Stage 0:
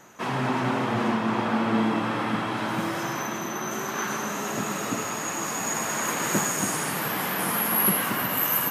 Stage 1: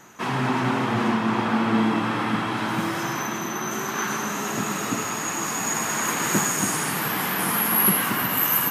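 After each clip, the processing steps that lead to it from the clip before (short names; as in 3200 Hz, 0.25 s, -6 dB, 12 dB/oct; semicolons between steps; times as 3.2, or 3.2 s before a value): bell 570 Hz -5.5 dB 0.59 oct; gain +3 dB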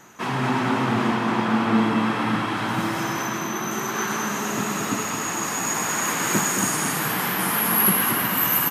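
echo 0.22 s -6 dB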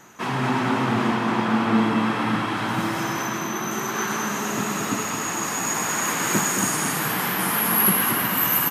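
nothing audible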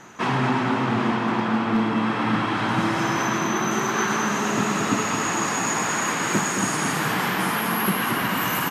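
air absorption 56 m; overloaded stage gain 12.5 dB; vocal rider 0.5 s; gain +1.5 dB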